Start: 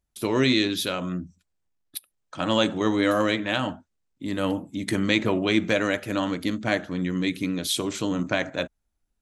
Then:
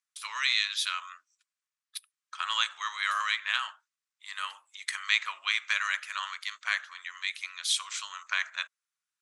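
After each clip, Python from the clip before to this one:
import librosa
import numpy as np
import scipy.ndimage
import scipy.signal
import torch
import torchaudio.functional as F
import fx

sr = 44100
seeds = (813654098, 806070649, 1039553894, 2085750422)

y = scipy.signal.sosfilt(scipy.signal.cheby1(4, 1.0, [1100.0, 9800.0], 'bandpass', fs=sr, output='sos'), x)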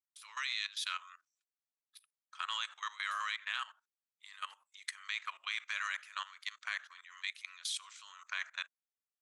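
y = fx.level_steps(x, sr, step_db=17)
y = y * librosa.db_to_amplitude(-3.5)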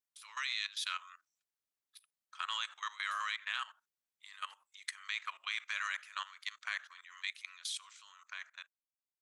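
y = fx.fade_out_tail(x, sr, length_s=1.87)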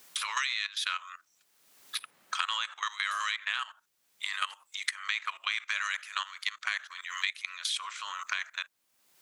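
y = fx.band_squash(x, sr, depth_pct=100)
y = y * librosa.db_to_amplitude(6.5)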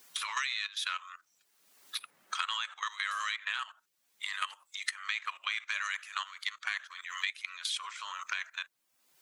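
y = fx.spec_quant(x, sr, step_db=15)
y = y * librosa.db_to_amplitude(-2.0)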